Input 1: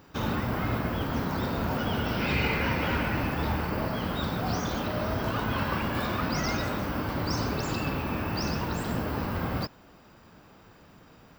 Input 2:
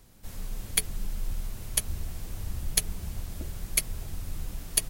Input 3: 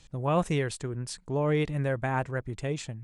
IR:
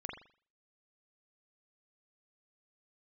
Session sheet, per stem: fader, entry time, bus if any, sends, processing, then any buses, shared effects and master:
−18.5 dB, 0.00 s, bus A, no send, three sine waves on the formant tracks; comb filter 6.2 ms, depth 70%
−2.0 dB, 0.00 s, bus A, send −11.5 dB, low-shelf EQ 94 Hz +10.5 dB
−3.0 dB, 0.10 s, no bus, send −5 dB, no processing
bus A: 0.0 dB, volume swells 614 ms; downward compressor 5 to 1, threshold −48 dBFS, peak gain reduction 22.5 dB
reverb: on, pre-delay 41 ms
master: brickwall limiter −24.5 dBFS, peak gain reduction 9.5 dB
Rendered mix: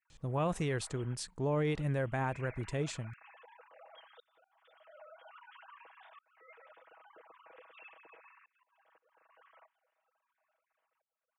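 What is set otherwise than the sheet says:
stem 1 −18.5 dB → −29.5 dB
stem 2: muted
reverb: off

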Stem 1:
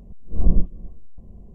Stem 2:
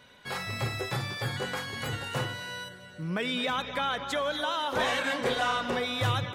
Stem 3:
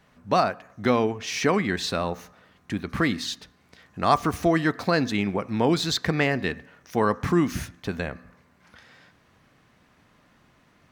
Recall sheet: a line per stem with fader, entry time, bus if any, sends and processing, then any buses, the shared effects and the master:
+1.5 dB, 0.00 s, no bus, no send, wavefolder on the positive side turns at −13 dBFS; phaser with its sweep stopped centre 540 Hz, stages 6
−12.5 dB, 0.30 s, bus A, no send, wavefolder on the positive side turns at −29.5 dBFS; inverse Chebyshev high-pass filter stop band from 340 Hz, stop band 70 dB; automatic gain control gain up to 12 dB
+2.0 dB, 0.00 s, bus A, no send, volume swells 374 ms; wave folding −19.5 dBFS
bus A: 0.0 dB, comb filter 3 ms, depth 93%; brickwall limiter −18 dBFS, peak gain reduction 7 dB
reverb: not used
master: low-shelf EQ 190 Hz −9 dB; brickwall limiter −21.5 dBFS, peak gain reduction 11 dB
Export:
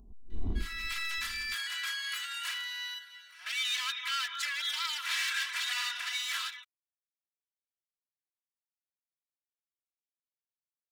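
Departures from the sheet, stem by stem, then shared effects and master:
stem 1 +1.5 dB → −9.0 dB
stem 3: muted
master: missing low-shelf EQ 190 Hz −9 dB

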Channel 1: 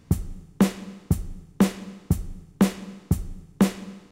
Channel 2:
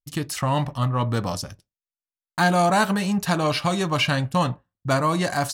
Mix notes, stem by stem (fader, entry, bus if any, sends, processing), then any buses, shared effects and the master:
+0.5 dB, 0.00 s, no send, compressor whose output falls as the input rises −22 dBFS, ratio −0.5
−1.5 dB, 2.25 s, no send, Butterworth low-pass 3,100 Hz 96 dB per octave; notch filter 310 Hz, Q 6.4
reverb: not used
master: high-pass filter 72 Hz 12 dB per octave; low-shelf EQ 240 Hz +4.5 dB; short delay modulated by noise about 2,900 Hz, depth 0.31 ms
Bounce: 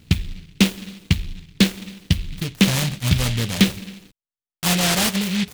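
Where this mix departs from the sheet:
stem 1: missing compressor whose output falls as the input rises −22 dBFS, ratio −0.5
master: missing high-pass filter 72 Hz 12 dB per octave

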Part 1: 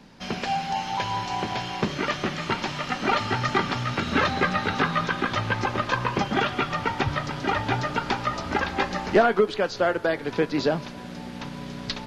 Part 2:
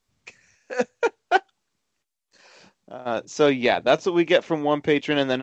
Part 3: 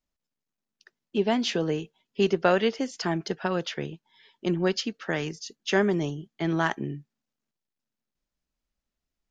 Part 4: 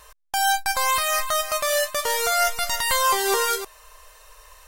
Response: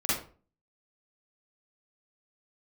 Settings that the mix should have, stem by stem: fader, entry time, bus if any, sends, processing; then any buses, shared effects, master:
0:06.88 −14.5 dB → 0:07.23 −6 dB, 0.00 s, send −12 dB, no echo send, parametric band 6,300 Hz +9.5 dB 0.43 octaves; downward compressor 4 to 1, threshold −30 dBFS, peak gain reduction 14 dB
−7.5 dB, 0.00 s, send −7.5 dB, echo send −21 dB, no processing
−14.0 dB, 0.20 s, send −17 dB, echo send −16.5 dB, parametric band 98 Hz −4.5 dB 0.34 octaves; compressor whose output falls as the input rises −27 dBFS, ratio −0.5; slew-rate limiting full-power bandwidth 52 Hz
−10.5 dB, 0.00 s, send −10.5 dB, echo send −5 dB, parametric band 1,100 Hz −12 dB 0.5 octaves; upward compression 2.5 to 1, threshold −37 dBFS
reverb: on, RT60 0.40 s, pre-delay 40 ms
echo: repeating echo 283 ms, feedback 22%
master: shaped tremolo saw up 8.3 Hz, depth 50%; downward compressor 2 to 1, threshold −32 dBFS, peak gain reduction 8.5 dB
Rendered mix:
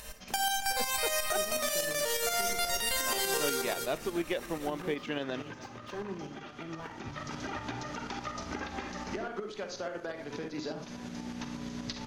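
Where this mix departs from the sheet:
stem 2: send off
stem 3: missing compressor whose output falls as the input rises −27 dBFS, ratio −0.5
stem 4 −10.5 dB → −2.0 dB

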